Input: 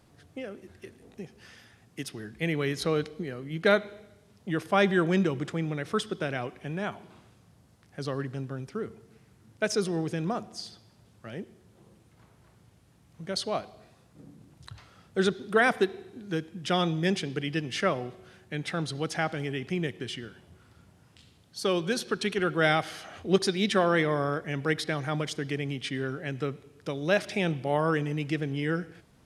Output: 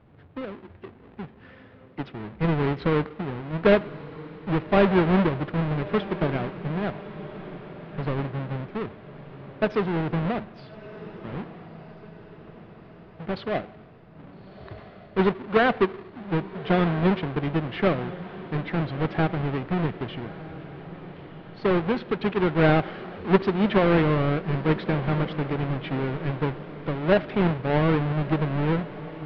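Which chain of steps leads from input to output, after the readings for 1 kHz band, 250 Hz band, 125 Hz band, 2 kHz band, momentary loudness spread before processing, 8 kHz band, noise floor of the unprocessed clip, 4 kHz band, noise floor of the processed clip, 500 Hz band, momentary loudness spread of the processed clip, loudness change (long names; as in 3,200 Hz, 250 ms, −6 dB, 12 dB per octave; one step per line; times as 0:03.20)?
+4.0 dB, +6.0 dB, +7.0 dB, 0.0 dB, 19 LU, below −25 dB, −60 dBFS, −3.5 dB, −49 dBFS, +4.0 dB, 21 LU, +4.0 dB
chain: each half-wave held at its own peak
Bessel low-pass filter 2,100 Hz, order 8
on a send: feedback delay with all-pass diffusion 1,302 ms, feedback 54%, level −15 dB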